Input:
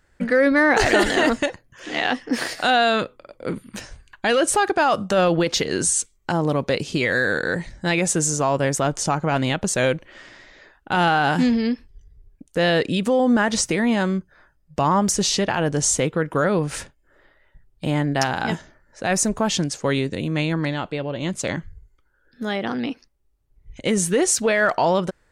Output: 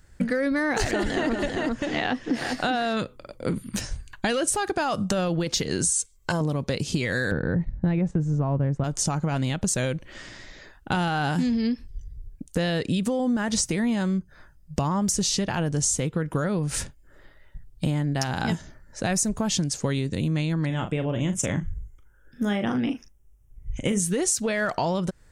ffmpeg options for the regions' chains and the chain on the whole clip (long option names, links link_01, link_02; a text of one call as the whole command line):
ffmpeg -i in.wav -filter_complex "[0:a]asettb=1/sr,asplit=3[link_01][link_02][link_03];[link_01]atrim=end=0.914[link_04];[link_02]atrim=start=0.91:end=2.97,asetpts=PTS-STARTPTS,afade=type=in:duration=0.004:curve=qsin,afade=type=out:start_time=2.056:duration=0.004:curve=qsin,aemphasis=mode=reproduction:type=75kf,aecho=1:1:396:0.447,atrim=end_sample=90846[link_05];[link_03]atrim=start=2.966[link_06];[link_04][link_05]acrossfade=duration=0.004:curve1=hsin:curve2=qsin[link_07];[link_07][link_06]acrossfade=duration=0.004:curve1=qsin:curve2=hsin,asettb=1/sr,asplit=3[link_08][link_09][link_10];[link_08]atrim=end=5.904[link_11];[link_09]atrim=start=5.9:end=6.41,asetpts=PTS-STARTPTS,afade=type=in:duration=0.004:curve=qsin,afade=type=out:start_time=0.506:duration=0.004:curve=qsin,lowshelf=frequency=330:gain=-7,aecho=1:1:1.9:0.56,atrim=end_sample=22491[link_12];[link_10]atrim=start=6.406[link_13];[link_11][link_12]acrossfade=duration=0.004:curve1=hsin:curve2=qsin[link_14];[link_14][link_13]acrossfade=duration=0.004:curve1=qsin:curve2=hsin,asettb=1/sr,asplit=3[link_15][link_16][link_17];[link_15]atrim=end=7.314[link_18];[link_16]atrim=start=7.31:end=8.84,asetpts=PTS-STARTPTS,afade=type=in:duration=0.004:curve=qsin,afade=type=out:start_time=1.526:duration=0.004:curve=qsin,lowpass=1500,agate=range=-8dB:threshold=-36dB:ratio=16:release=100:detection=peak,lowshelf=frequency=260:gain=11[link_19];[link_17]atrim=start=8.836[link_20];[link_18][link_19]acrossfade=duration=0.004:curve1=hsin:curve2=qsin[link_21];[link_21][link_20]acrossfade=duration=0.004:curve1=qsin:curve2=hsin,asettb=1/sr,asplit=3[link_22][link_23][link_24];[link_22]atrim=end=20.664[link_25];[link_23]atrim=start=20.66:end=24,asetpts=PTS-STARTPTS,afade=type=in:duration=0.004:curve=qsin,afade=type=out:start_time=3.336:duration=0.004:curve=qsin,asuperstop=centerf=4300:order=4:qfactor=2.2,asplit=2[link_26][link_27];[link_27]adelay=39,volume=-9dB[link_28];[link_26][link_28]amix=inputs=2:normalize=0,atrim=end_sample=147294[link_29];[link_24]atrim=start=23.996[link_30];[link_25][link_29]acrossfade=duration=0.004:curve1=hsin:curve2=qsin[link_31];[link_31][link_30]acrossfade=duration=0.004:curve1=qsin:curve2=hsin,bass=frequency=250:gain=10,treble=frequency=4000:gain=8,acompressor=threshold=-22dB:ratio=6" out.wav